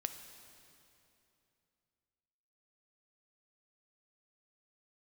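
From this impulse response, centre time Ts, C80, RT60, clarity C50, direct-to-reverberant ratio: 32 ms, 9.5 dB, 2.8 s, 8.5 dB, 7.5 dB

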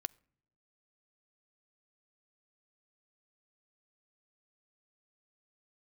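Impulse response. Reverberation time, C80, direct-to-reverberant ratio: non-exponential decay, 29.5 dB, 15.5 dB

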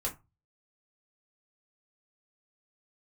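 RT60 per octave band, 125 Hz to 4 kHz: 0.50, 0.25, 0.25, 0.25, 0.20, 0.15 seconds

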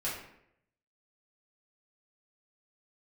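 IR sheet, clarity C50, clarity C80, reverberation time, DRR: 3.0 dB, 6.5 dB, 0.75 s, −8.0 dB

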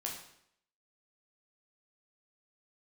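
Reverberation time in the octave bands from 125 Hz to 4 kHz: 0.70, 0.75, 0.70, 0.70, 0.70, 0.65 seconds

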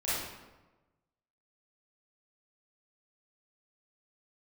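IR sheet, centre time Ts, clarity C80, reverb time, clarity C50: 90 ms, 1.5 dB, 1.2 s, −3.5 dB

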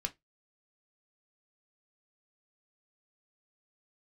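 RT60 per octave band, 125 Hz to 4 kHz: 0.20, 0.15, 0.20, 0.15, 0.15, 0.15 seconds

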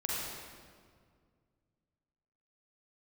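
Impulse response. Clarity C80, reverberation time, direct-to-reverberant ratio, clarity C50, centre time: −1.0 dB, 2.0 s, −5.5 dB, −3.5 dB, 131 ms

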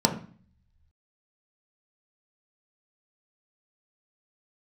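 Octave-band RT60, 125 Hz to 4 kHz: 1.1, 0.70, 0.40, 0.45, 0.45, 0.45 seconds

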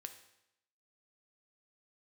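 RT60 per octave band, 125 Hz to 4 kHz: 0.85, 0.85, 0.85, 0.85, 0.80, 0.80 seconds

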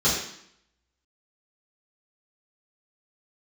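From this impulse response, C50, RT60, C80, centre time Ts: 2.5 dB, 0.70 s, 5.5 dB, 49 ms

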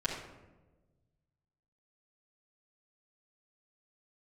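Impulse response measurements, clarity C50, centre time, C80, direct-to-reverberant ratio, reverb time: 5.0 dB, 34 ms, 7.5 dB, −9.0 dB, 1.2 s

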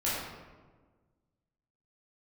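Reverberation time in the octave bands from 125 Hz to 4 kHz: 1.9, 1.8, 1.5, 1.3, 1.0, 0.75 seconds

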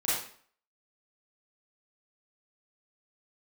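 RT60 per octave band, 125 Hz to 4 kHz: 0.45, 0.50, 0.50, 0.50, 0.50, 0.45 seconds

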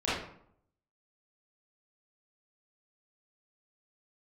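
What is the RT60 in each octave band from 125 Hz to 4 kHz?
0.85, 0.75, 0.65, 0.65, 0.50, 0.40 seconds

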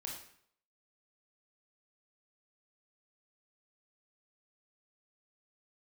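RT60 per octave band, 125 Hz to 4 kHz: 0.65, 0.60, 0.65, 0.65, 0.60, 0.55 seconds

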